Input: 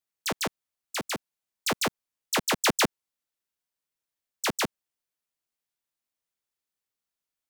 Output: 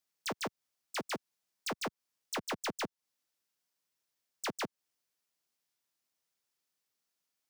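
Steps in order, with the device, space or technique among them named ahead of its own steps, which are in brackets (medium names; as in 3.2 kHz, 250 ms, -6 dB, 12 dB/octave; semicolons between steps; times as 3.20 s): broadcast voice chain (high-pass 96 Hz; de-esser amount 75%; compression, threshold -35 dBFS, peak gain reduction 12.5 dB; peaking EQ 5.3 kHz +4 dB 0.62 oct; peak limiter -31 dBFS, peak gain reduction 3.5 dB); trim +2.5 dB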